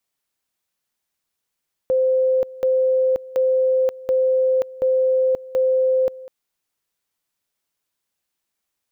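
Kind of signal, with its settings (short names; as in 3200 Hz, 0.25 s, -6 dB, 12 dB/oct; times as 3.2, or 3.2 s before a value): two-level tone 519 Hz -14.5 dBFS, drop 19.5 dB, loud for 0.53 s, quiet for 0.20 s, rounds 6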